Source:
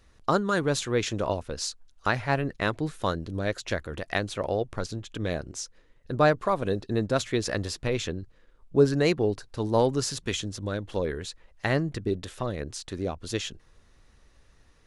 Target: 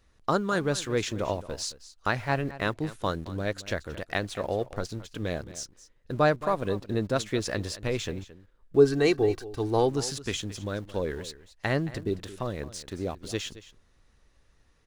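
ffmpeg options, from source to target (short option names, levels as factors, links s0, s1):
-filter_complex "[0:a]asettb=1/sr,asplit=3[s0][s1][s2];[s0]atrim=end=8.764[s3];[s1]atrim=start=8.76:end=9.89,asetpts=PTS-STARTPTS,afade=t=in:d=0.004:c=qsin,afade=t=out:st=1.126:d=0.004:c=qsin,aecho=1:1:2.6:0.58,atrim=end_sample=49833[s4];[s2]atrim=start=9.886[s5];[s3][s4]acrossfade=d=0.004:c1=hsin:c2=qsin[s6];[s6][s5]acrossfade=d=0.004:c1=qsin:c2=hsin,asplit=2[s7][s8];[s8]aeval=exprs='val(0)*gte(abs(val(0)),0.0126)':c=same,volume=0.473[s9];[s7][s9]amix=inputs=2:normalize=0,aecho=1:1:221:0.15,volume=0.562"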